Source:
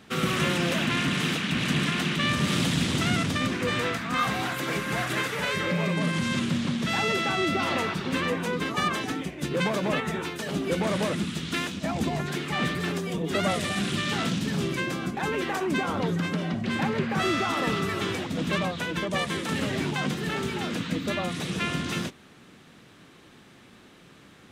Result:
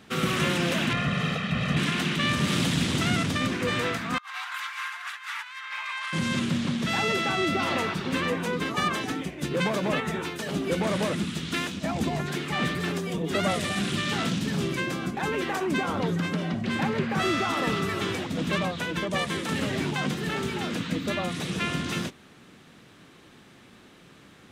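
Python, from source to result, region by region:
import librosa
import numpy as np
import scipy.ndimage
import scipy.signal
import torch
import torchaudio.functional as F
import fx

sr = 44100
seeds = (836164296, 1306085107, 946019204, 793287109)

y = fx.chain(x, sr, fx.lowpass(hz=1700.0, slope=6),
    fx.comb(ms=1.6, depth=0.84), at=(0.93, 1.77))
y = fx.chain(y, sr, fx.steep_highpass(hz=920.0, slope=48),
    fx.over_compress(threshold_db=-34.0, ratio=-0.5),
    fx.high_shelf(hz=5700.0, db=-10.5), at=(4.18, 6.13))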